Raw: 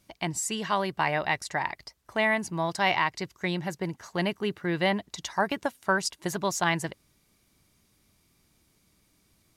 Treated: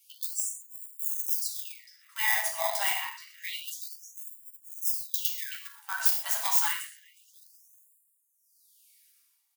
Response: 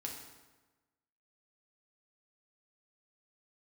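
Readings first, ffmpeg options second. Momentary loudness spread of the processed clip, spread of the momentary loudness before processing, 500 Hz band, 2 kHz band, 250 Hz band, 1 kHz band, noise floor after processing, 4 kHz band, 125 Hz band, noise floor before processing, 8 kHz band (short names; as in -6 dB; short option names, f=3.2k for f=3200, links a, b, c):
18 LU, 8 LU, -14.0 dB, -5.5 dB, under -40 dB, -9.5 dB, -71 dBFS, -2.5 dB, under -40 dB, -68 dBFS, +3.0 dB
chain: -filter_complex "[0:a]flanger=delay=9.9:depth=9.2:regen=-20:speed=1.4:shape=sinusoidal,asplit=2[a][b];[b]adelay=361,lowpass=f=4.8k:p=1,volume=-19dB,asplit=2[c][d];[d]adelay=361,lowpass=f=4.8k:p=1,volume=0.53,asplit=2[e][f];[f]adelay=361,lowpass=f=4.8k:p=1,volume=0.53,asplit=2[g][h];[h]adelay=361,lowpass=f=4.8k:p=1,volume=0.53[i];[a][c][e][g][i]amix=inputs=5:normalize=0,tremolo=f=0.79:d=0.8,acrossover=split=2200[j][k];[k]aeval=exprs='(mod(39.8*val(0)+1,2)-1)/39.8':c=same[l];[j][l]amix=inputs=2:normalize=0,equalizer=f=2.9k:t=o:w=0.37:g=4[m];[1:a]atrim=start_sample=2205,atrim=end_sample=6174[n];[m][n]afir=irnorm=-1:irlink=0,asplit=2[o][p];[p]acrusher=samples=31:mix=1:aa=0.000001,volume=-6.5dB[q];[o][q]amix=inputs=2:normalize=0,aemphasis=mode=production:type=bsi,afftfilt=real='re*gte(b*sr/1024,580*pow(7000/580,0.5+0.5*sin(2*PI*0.28*pts/sr)))':imag='im*gte(b*sr/1024,580*pow(7000/580,0.5+0.5*sin(2*PI*0.28*pts/sr)))':win_size=1024:overlap=0.75,volume=3dB"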